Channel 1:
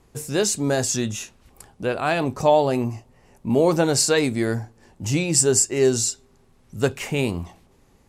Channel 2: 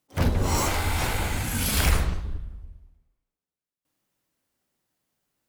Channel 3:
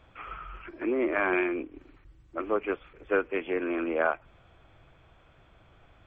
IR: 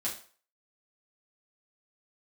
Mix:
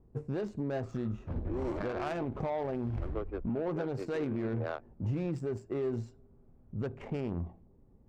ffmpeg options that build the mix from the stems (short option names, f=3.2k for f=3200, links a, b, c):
-filter_complex "[0:a]acompressor=threshold=-19dB:ratio=6,volume=-3dB,asplit=3[a][b][c];[b]volume=-19.5dB[d];[1:a]highshelf=f=2.9k:g=8.5,adelay=1100,volume=-12.5dB[e];[2:a]adelay=650,volume=-6.5dB[f];[c]apad=whole_len=290569[g];[e][g]sidechaincompress=threshold=-34dB:ratio=8:attack=16:release=204[h];[3:a]atrim=start_sample=2205[i];[d][i]afir=irnorm=-1:irlink=0[j];[a][h][f][j]amix=inputs=4:normalize=0,adynamicsmooth=sensitivity=1:basefreq=500,alimiter=level_in=2dB:limit=-24dB:level=0:latency=1:release=77,volume=-2dB"